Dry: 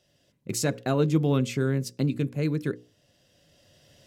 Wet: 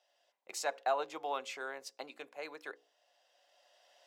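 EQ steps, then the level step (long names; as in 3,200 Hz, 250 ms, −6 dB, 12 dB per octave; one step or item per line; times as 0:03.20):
four-pole ladder high-pass 690 Hz, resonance 60%
parametric band 12,000 Hz −8.5 dB 1.3 octaves
+4.5 dB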